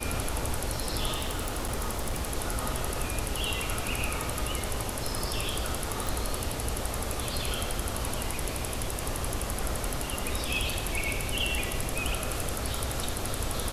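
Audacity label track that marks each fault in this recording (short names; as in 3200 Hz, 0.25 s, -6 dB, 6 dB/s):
1.130000	2.330000	clipped -25.5 dBFS
6.070000	6.070000	pop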